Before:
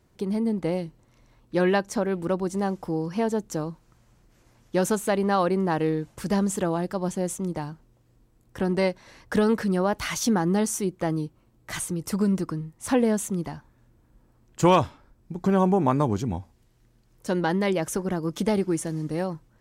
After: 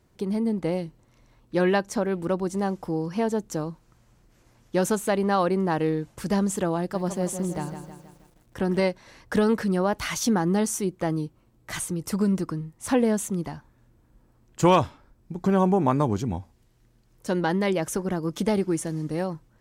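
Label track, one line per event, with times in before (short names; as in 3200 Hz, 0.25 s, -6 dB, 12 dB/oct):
6.780000	8.800000	lo-fi delay 0.16 s, feedback 55%, word length 9-bit, level -8.5 dB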